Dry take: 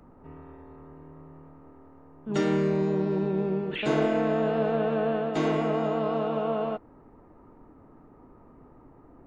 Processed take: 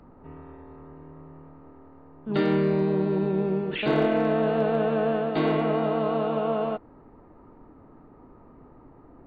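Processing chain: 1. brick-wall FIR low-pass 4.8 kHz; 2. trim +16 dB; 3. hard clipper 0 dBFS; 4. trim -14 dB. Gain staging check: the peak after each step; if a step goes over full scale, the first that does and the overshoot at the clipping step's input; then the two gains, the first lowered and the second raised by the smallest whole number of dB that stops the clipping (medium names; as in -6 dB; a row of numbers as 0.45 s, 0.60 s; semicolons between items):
-12.0 dBFS, +4.0 dBFS, 0.0 dBFS, -14.0 dBFS; step 2, 4.0 dB; step 2 +12 dB, step 4 -10 dB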